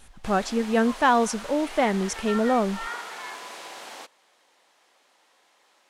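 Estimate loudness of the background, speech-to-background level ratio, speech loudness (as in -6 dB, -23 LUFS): -37.0 LUFS, 13.0 dB, -24.0 LUFS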